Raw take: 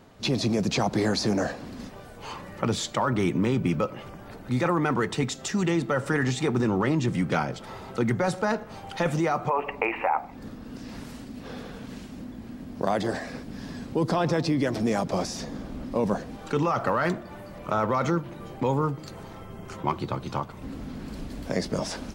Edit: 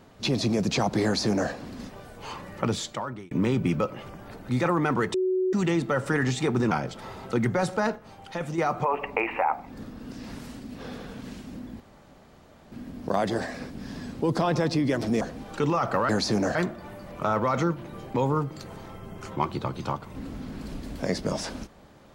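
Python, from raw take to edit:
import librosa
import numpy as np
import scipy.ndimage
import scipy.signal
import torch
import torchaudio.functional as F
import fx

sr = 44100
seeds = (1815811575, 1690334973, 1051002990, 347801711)

y = fx.edit(x, sr, fx.duplicate(start_s=1.04, length_s=0.46, to_s=17.02),
    fx.fade_out_span(start_s=2.65, length_s=0.66),
    fx.bleep(start_s=5.14, length_s=0.39, hz=372.0, db=-21.5),
    fx.cut(start_s=6.71, length_s=0.65),
    fx.clip_gain(start_s=8.61, length_s=0.62, db=-6.5),
    fx.insert_room_tone(at_s=12.45, length_s=0.92),
    fx.cut(start_s=14.94, length_s=1.2), tone=tone)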